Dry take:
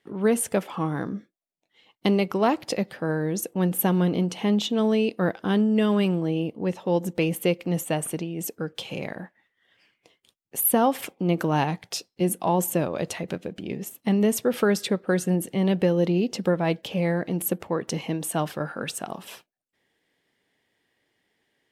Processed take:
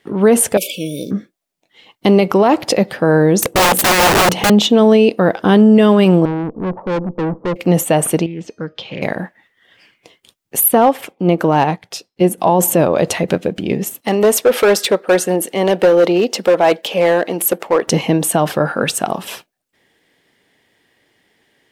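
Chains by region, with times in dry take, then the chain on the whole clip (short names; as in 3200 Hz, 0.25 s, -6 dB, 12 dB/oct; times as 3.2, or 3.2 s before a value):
0.57–1.11 brick-wall FIR band-stop 630–2200 Hz + tilt +4.5 dB/oct
3.41–4.5 HPF 46 Hz + low shelf 380 Hz +8 dB + wrapped overs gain 21.5 dB
6.25–7.56 steep low-pass 1200 Hz 48 dB/oct + tube stage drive 30 dB, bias 0.45
8.26–9.02 LPF 4900 Hz 24 dB/oct + resonator 620 Hz, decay 0.37 s + Doppler distortion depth 0.15 ms
10.68–12.38 tone controls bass -2 dB, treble -4 dB + overloaded stage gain 14 dB + upward expander, over -36 dBFS
14.01–17.87 HPF 400 Hz + hard clip -23 dBFS
whole clip: dynamic EQ 650 Hz, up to +5 dB, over -34 dBFS, Q 0.73; maximiser +15 dB; gain -2 dB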